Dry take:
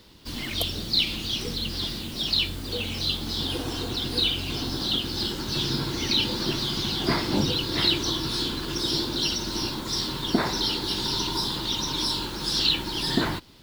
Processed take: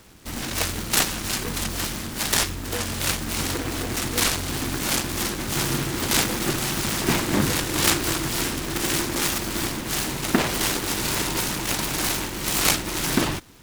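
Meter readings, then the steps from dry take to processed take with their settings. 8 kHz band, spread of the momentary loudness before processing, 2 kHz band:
+12.0 dB, 6 LU, +7.0 dB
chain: delay time shaken by noise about 1.2 kHz, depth 0.19 ms; trim +2.5 dB

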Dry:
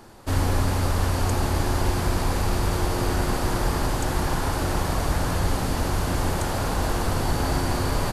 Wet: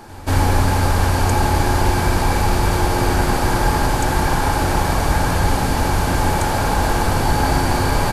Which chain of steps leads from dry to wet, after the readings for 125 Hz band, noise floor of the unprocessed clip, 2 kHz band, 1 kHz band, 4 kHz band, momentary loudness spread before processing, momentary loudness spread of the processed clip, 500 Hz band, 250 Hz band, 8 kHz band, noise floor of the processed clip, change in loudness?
+6.0 dB, -27 dBFS, +9.0 dB, +9.5 dB, +6.0 dB, 2 LU, 1 LU, +6.0 dB, +6.0 dB, +6.0 dB, -20 dBFS, +7.0 dB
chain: small resonant body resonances 850/1600/2300 Hz, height 9 dB; on a send: reverse echo 187 ms -22 dB; on the sum: trim +6 dB

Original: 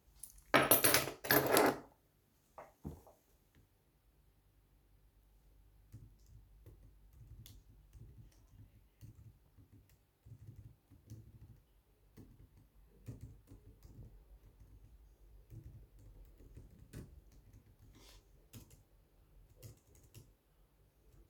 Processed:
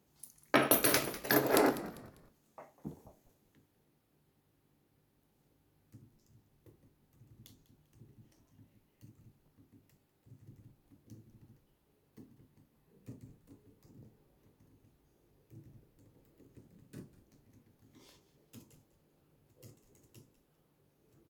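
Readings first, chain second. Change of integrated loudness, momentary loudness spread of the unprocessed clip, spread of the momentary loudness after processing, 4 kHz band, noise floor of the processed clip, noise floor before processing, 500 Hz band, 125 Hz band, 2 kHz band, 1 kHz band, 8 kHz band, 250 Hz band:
+1.0 dB, 7 LU, 9 LU, 0.0 dB, -74 dBFS, -74 dBFS, +3.0 dB, +0.5 dB, +0.5 dB, +1.0 dB, 0.0 dB, +5.0 dB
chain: Chebyshev high-pass 200 Hz, order 2; bass shelf 330 Hz +7 dB; frequency-shifting echo 198 ms, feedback 33%, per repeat -85 Hz, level -16 dB; trim +1 dB

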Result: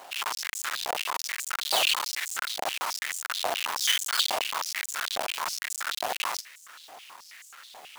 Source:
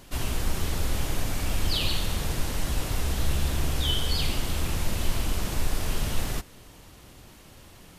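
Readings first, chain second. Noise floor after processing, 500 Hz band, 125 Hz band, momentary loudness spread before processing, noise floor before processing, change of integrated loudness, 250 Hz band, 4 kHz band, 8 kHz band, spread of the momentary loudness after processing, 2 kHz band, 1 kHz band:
-51 dBFS, -0.5 dB, under -30 dB, 4 LU, -50 dBFS, +1.0 dB, -18.5 dB, +3.5 dB, +3.5 dB, 22 LU, +6.0 dB, +7.0 dB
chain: square wave that keeps the level; step-sequenced high-pass 9.3 Hz 730–7200 Hz

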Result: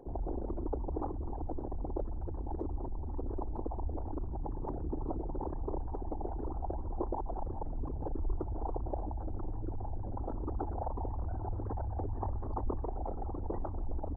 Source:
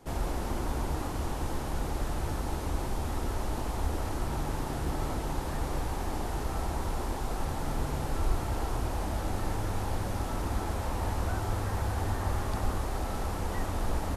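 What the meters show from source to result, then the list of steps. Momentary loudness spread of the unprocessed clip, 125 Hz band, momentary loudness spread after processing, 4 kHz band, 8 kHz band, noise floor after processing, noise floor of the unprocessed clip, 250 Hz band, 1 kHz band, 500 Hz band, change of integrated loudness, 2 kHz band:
2 LU, -6.0 dB, 3 LU, under -40 dB, under -35 dB, -39 dBFS, -34 dBFS, -4.5 dB, -6.5 dB, -3.5 dB, -5.5 dB, under -25 dB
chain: resonances exaggerated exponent 3; resonant low shelf 240 Hz -11 dB, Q 1.5; reverse echo 101 ms -23.5 dB; trim +6 dB

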